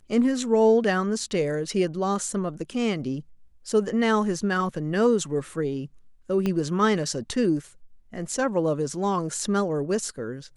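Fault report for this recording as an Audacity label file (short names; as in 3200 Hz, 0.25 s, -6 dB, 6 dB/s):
6.460000	6.460000	pop -14 dBFS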